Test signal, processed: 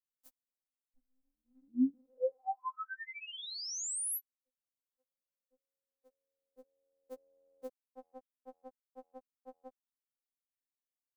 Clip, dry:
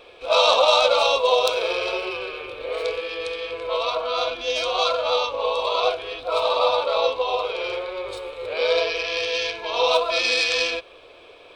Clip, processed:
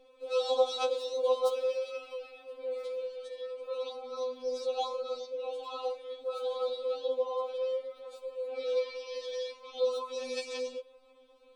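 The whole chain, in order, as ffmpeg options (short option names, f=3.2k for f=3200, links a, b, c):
-filter_complex "[0:a]equalizer=f=2.4k:w=0.49:g=-13.5,acrossover=split=130|1600[a][b][c];[a]acompressor=threshold=-59dB:ratio=4[d];[d][b][c]amix=inputs=3:normalize=0,afftfilt=real='re*3.46*eq(mod(b,12),0)':imag='im*3.46*eq(mod(b,12),0)':win_size=2048:overlap=0.75,volume=-6.5dB"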